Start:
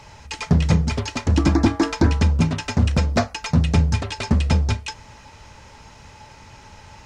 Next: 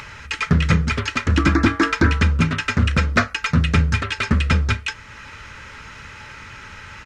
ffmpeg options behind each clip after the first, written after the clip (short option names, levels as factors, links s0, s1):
-af "firequalizer=gain_entry='entry(470,0);entry(790,-8);entry(1300,12);entry(4900,-1)':delay=0.05:min_phase=1,acompressor=mode=upward:threshold=0.0251:ratio=2.5"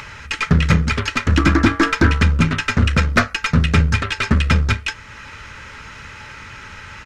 -af "aeval=exprs='0.708*(cos(1*acos(clip(val(0)/0.708,-1,1)))-cos(1*PI/2))+0.0316*(cos(8*acos(clip(val(0)/0.708,-1,1)))-cos(8*PI/2))':c=same,volume=1.26"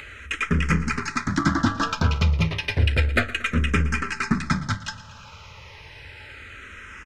-filter_complex "[0:a]aecho=1:1:115|230|345|460|575|690:0.141|0.0848|0.0509|0.0305|0.0183|0.011,asplit=2[s0][s1];[s1]afreqshift=-0.31[s2];[s0][s2]amix=inputs=2:normalize=1,volume=0.708"